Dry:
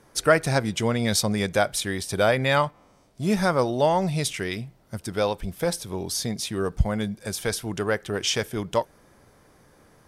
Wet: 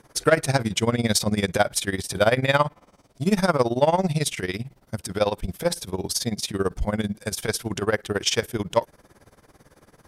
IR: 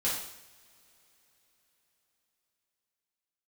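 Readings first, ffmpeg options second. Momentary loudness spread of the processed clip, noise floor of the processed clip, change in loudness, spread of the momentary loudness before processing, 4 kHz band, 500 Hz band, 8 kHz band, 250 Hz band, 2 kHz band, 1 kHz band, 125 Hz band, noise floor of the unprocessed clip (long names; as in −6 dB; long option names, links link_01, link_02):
8 LU, −61 dBFS, +1.0 dB, 9 LU, +1.0 dB, +1.0 dB, +1.5 dB, +1.0 dB, +0.5 dB, +0.5 dB, +1.0 dB, −57 dBFS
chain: -af "acontrast=78,tremolo=f=18:d=0.88,volume=-1.5dB"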